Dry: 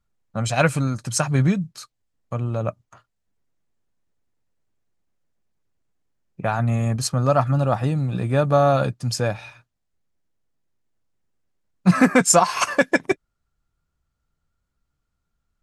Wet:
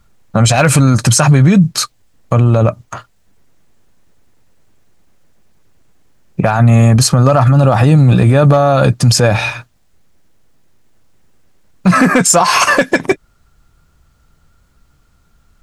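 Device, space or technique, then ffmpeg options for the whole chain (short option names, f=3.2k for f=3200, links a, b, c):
loud club master: -af "acompressor=threshold=-20dB:ratio=2.5,asoftclip=type=hard:threshold=-13dB,alimiter=level_in=24dB:limit=-1dB:release=50:level=0:latency=1,volume=-1dB"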